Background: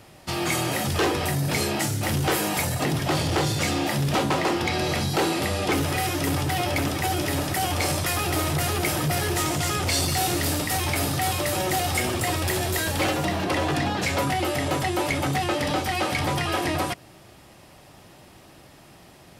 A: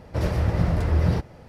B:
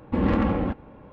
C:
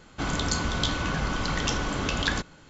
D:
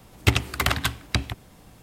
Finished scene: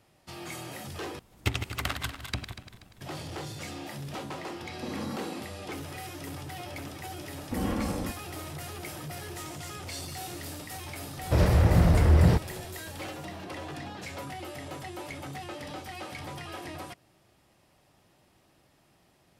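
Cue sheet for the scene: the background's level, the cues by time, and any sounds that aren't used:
background -15 dB
1.19 replace with D -9.5 dB + regenerating reverse delay 0.12 s, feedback 60%, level -8.5 dB
4.69 add B -13.5 dB + steep high-pass 190 Hz 96 dB/oct
7.39 add B -8.5 dB
11.17 add A -1 dB + sample leveller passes 1
not used: C

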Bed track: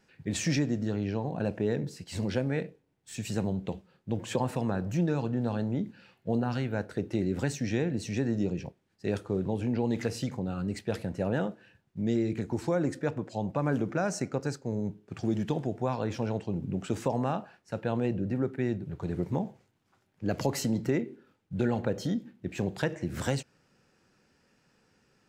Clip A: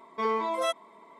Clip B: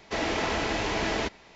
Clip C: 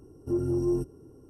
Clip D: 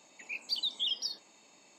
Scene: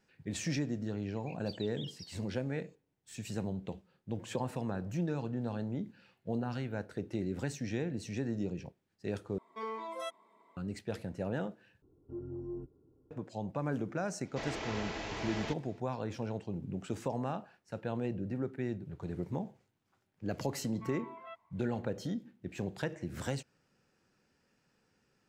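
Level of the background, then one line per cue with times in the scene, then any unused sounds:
bed track -6.5 dB
0.97 add D -16 dB
9.38 replace with A -12 dB
11.82 replace with C -14 dB + air absorption 460 m
14.25 add B -11.5 dB
20.63 add A -17.5 dB + elliptic band-pass 700–2800 Hz

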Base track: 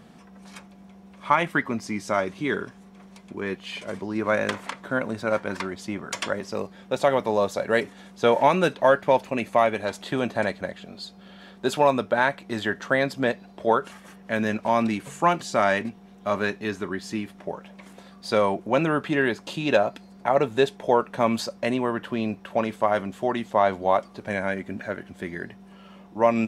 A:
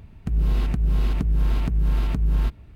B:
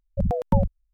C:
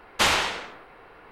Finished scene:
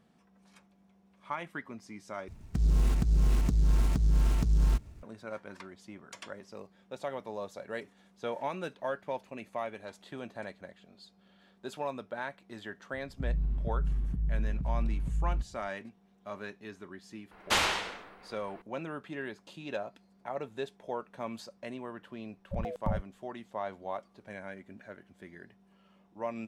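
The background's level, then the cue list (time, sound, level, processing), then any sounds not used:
base track -16.5 dB
2.28 replace with A -4 dB + noise-modulated delay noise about 5200 Hz, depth 0.049 ms
12.93 add A -9.5 dB + EQ curve 160 Hz 0 dB, 480 Hz -13 dB, 1600 Hz -17 dB, 4900 Hz -27 dB
17.31 add C -6 dB
22.34 add B -12 dB

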